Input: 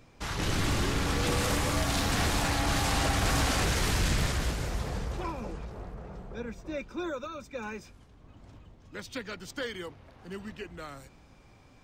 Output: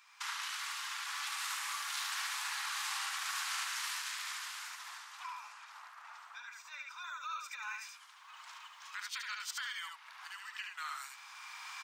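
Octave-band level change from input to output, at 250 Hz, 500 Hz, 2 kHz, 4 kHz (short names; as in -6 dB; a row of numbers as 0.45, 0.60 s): under -40 dB, under -35 dB, -5.0 dB, -5.5 dB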